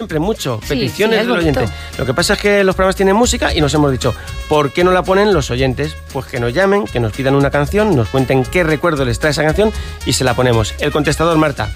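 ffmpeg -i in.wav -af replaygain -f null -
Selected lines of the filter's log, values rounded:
track_gain = -4.7 dB
track_peak = 0.597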